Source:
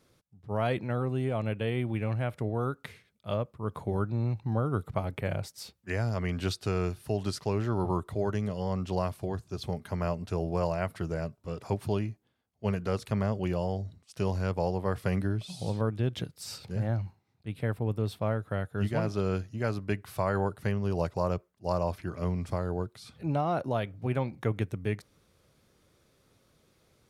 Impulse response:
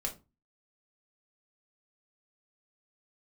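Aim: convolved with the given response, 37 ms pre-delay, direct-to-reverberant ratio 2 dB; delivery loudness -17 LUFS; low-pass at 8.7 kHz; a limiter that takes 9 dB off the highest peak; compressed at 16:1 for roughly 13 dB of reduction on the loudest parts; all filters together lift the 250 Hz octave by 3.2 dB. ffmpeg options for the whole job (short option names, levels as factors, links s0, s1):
-filter_complex "[0:a]lowpass=8700,equalizer=f=250:t=o:g=4.5,acompressor=threshold=0.0178:ratio=16,alimiter=level_in=2.37:limit=0.0631:level=0:latency=1,volume=0.422,asplit=2[s0][s1];[1:a]atrim=start_sample=2205,adelay=37[s2];[s1][s2]afir=irnorm=-1:irlink=0,volume=0.668[s3];[s0][s3]amix=inputs=2:normalize=0,volume=16.8"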